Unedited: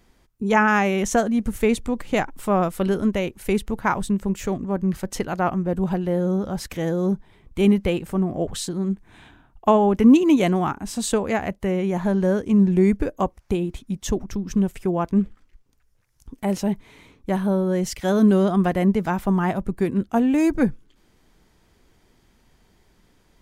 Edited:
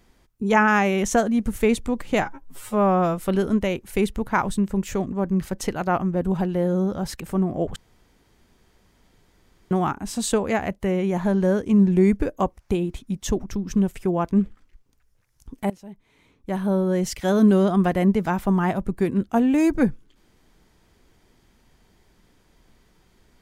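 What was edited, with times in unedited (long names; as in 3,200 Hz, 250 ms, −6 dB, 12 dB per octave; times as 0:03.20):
0:02.22–0:02.70: time-stretch 2×
0:06.72–0:08.00: remove
0:08.56–0:10.51: fill with room tone
0:16.50–0:17.56: fade in quadratic, from −20 dB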